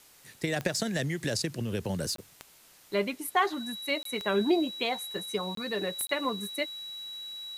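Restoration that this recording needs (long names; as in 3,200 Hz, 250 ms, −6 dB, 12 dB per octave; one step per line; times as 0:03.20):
click removal
notch filter 3,900 Hz, Q 30
repair the gap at 0:02.16/0:04.03/0:05.55/0:06.07, 23 ms
broadband denoise 19 dB, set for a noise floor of −57 dBFS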